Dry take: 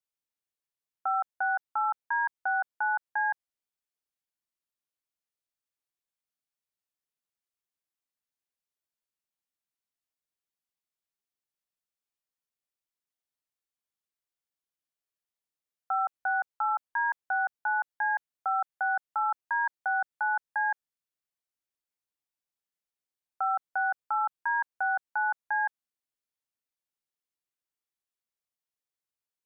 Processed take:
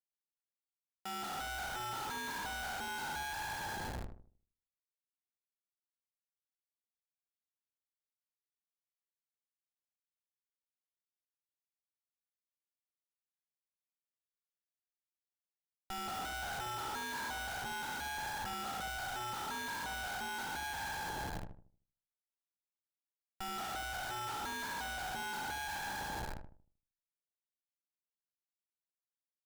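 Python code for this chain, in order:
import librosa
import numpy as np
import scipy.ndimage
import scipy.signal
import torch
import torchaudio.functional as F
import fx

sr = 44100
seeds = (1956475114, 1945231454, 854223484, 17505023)

y = fx.spec_trails(x, sr, decay_s=1.62)
y = fx.schmitt(y, sr, flips_db=-46.5)
y = fx.echo_filtered(y, sr, ms=77, feedback_pct=38, hz=930.0, wet_db=-5.5)
y = y * librosa.db_to_amplitude(-7.5)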